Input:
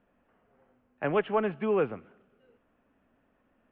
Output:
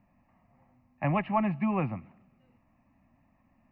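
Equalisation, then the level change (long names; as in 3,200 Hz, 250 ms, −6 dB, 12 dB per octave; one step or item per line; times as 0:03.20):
parametric band 120 Hz +8 dB 2 octaves
phaser with its sweep stopped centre 2,200 Hz, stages 8
+3.5 dB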